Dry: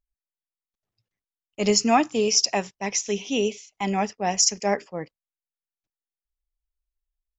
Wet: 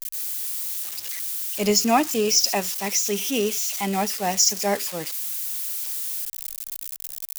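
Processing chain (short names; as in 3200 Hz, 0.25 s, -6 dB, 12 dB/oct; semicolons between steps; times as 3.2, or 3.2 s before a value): switching spikes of -20 dBFS; reverse; upward compressor, threshold -29 dBFS; reverse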